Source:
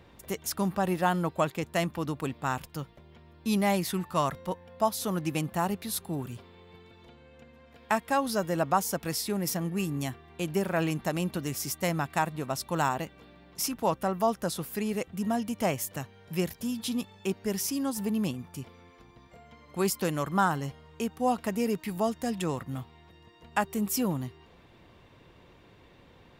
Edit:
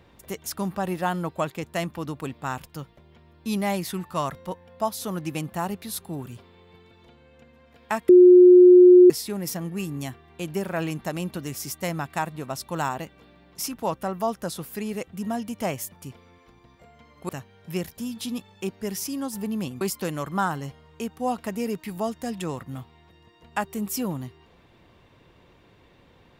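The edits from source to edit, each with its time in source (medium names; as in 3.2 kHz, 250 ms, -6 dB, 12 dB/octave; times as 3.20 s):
8.09–9.10 s: bleep 360 Hz -7.5 dBFS
18.44–19.81 s: move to 15.92 s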